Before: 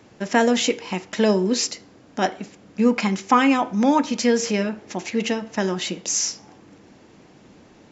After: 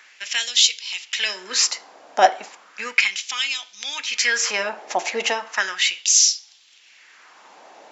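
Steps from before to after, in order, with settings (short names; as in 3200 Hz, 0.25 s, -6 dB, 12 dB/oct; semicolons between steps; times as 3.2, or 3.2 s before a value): dynamic EQ 940 Hz, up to -5 dB, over -32 dBFS, Q 1.4; LFO high-pass sine 0.35 Hz 690–3900 Hz; gain +5.5 dB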